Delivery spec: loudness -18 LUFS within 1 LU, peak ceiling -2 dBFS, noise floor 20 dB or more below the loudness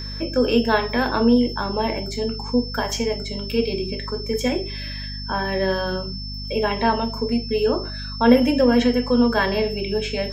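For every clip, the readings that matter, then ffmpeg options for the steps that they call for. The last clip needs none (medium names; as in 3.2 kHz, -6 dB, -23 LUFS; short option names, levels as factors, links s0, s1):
hum 50 Hz; highest harmonic 250 Hz; hum level -30 dBFS; steady tone 5.3 kHz; tone level -33 dBFS; loudness -21.5 LUFS; peak level -2.5 dBFS; loudness target -18.0 LUFS
-> -af "bandreject=f=50:t=h:w=4,bandreject=f=100:t=h:w=4,bandreject=f=150:t=h:w=4,bandreject=f=200:t=h:w=4,bandreject=f=250:t=h:w=4"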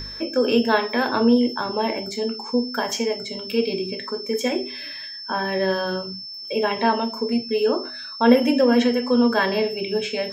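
hum not found; steady tone 5.3 kHz; tone level -33 dBFS
-> -af "bandreject=f=5300:w=30"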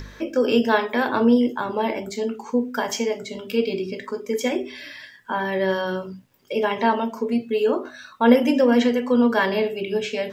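steady tone not found; loudness -22.0 LUFS; peak level -3.5 dBFS; loudness target -18.0 LUFS
-> -af "volume=1.58,alimiter=limit=0.794:level=0:latency=1"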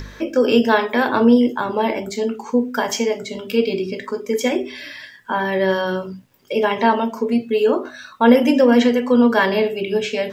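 loudness -18.5 LUFS; peak level -2.0 dBFS; noise floor -44 dBFS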